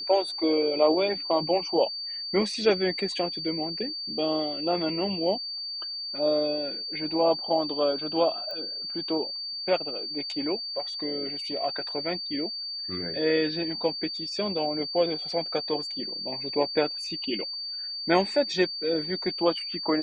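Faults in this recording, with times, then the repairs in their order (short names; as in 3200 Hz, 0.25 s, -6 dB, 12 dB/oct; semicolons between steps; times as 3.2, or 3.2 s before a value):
tone 4600 Hz -32 dBFS
8.51 pop -25 dBFS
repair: de-click; notch 4600 Hz, Q 30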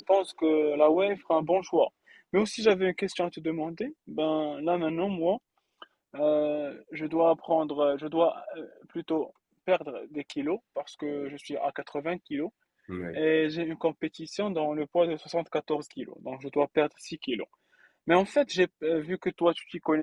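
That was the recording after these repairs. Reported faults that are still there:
none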